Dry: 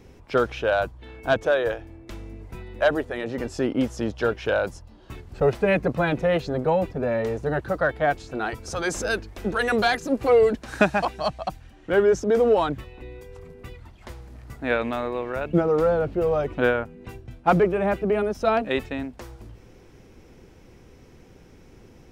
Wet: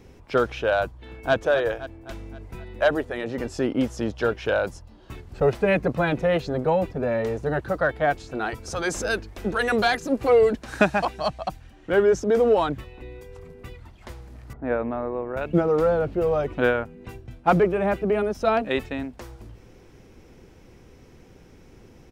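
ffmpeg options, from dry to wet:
-filter_complex "[0:a]asplit=2[a][b];[b]afade=t=in:st=0.85:d=0.01,afade=t=out:st=1.34:d=0.01,aecho=0:1:260|520|780|1040|1300|1560:0.316228|0.173925|0.0956589|0.0526124|0.0289368|0.0159152[c];[a][c]amix=inputs=2:normalize=0,asettb=1/sr,asplit=3[d][e][f];[d]atrim=end=14.534[g];[e]atrim=start=14.53:end=15.37,asetpts=PTS-STARTPTS,afade=t=in:d=0.004:c=qsin,afade=t=out:st=0.836:d=0.004:c=qsin,lowpass=1.1k[h];[f]atrim=start=15.366[i];[g][h]acrossfade=d=0.004:c1=hsin:c2=qsin[j];[j][i]acrossfade=d=0.004:c1=qsin:c2=hsin"

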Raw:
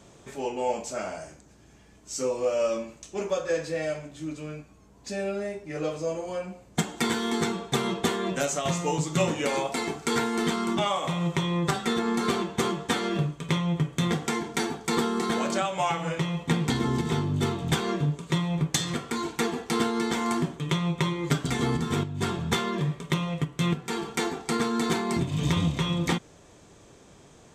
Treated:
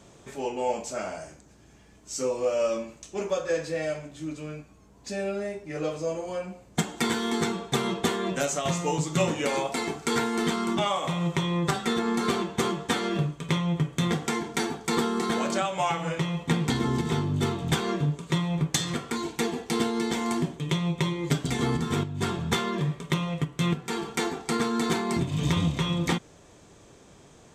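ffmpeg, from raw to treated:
-filter_complex "[0:a]asettb=1/sr,asplit=3[a][b][c];[a]atrim=end=19.174[d];[b]atrim=start=19.17:end=21.59,asetpts=PTS-STARTPTS,afade=t=in:d=0.004:c=qsin,afade=t=out:st=2.416:d=0.004:c=qsin,equalizer=f=1.3k:t=o:w=0.77:g=-5.5[e];[c]atrim=start=21.586[f];[d][e]acrossfade=d=0.004:c1=hsin:c2=qsin[g];[g][f]acrossfade=d=0.004:c1=qsin:c2=hsin"

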